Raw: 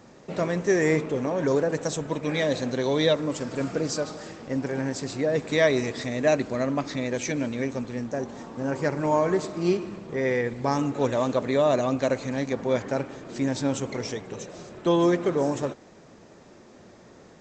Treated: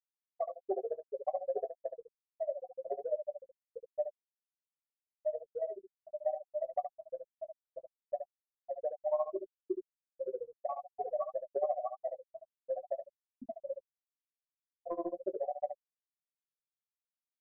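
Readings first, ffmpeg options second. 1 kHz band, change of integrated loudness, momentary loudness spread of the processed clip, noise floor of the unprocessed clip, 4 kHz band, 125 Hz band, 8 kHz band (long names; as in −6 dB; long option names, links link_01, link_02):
−10.0 dB, −13.0 dB, 14 LU, −51 dBFS, below −40 dB, below −40 dB, below −40 dB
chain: -filter_complex "[0:a]aemphasis=mode=reproduction:type=75kf,bandreject=frequency=50:width_type=h:width=6,bandreject=frequency=100:width_type=h:width=6,bandreject=frequency=150:width_type=h:width=6,bandreject=frequency=200:width_type=h:width=6,bandreject=frequency=250:width_type=h:width=6,bandreject=frequency=300:width_type=h:width=6,bandreject=frequency=350:width_type=h:width=6,bandreject=frequency=400:width_type=h:width=6,bandreject=frequency=450:width_type=h:width=6,acrossover=split=120|1400[link_01][link_02][link_03];[link_01]acrusher=samples=33:mix=1:aa=0.000001:lfo=1:lforange=33:lforate=0.51[link_04];[link_04][link_02][link_03]amix=inputs=3:normalize=0,tremolo=f=14:d=0.85,asplit=3[link_05][link_06][link_07];[link_05]bandpass=frequency=730:width_type=q:width=8,volume=0dB[link_08];[link_06]bandpass=frequency=1090:width_type=q:width=8,volume=-6dB[link_09];[link_07]bandpass=frequency=2440:width_type=q:width=8,volume=-9dB[link_10];[link_08][link_09][link_10]amix=inputs=3:normalize=0,afftfilt=real='re*gte(hypot(re,im),0.0631)':imag='im*gte(hypot(re,im),0.0631)':win_size=1024:overlap=0.75,acompressor=threshold=-45dB:ratio=5,aecho=1:1:5.2:0.35,asplit=2[link_11][link_12];[link_12]aecho=0:1:15|71:0.282|0.422[link_13];[link_11][link_13]amix=inputs=2:normalize=0,asubboost=boost=3:cutoff=240,volume=13dB"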